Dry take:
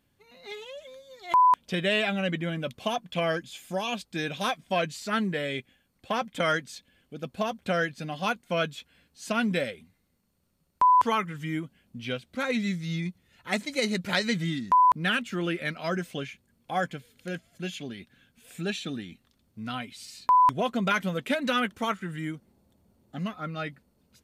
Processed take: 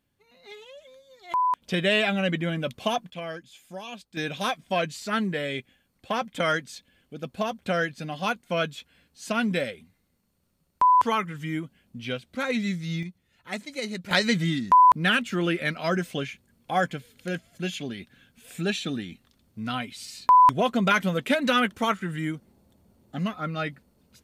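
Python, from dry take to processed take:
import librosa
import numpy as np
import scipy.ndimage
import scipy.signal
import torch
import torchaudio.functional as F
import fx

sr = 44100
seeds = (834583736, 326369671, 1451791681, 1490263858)

y = fx.gain(x, sr, db=fx.steps((0.0, -4.5), (1.62, 3.0), (3.1, -8.0), (4.17, 1.0), (13.03, -5.0), (14.11, 4.0)))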